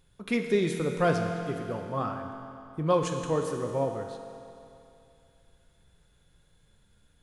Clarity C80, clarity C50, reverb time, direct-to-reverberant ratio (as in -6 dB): 5.5 dB, 4.5 dB, 2.7 s, 3.0 dB